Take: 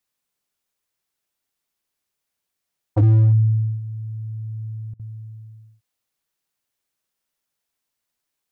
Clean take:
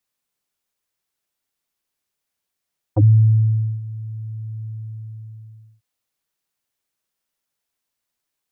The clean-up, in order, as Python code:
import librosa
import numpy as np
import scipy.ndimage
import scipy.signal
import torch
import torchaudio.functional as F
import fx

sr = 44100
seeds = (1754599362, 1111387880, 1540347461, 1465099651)

y = fx.fix_declip(x, sr, threshold_db=-11.0)
y = fx.fix_interpolate(y, sr, at_s=(4.94,), length_ms=54.0)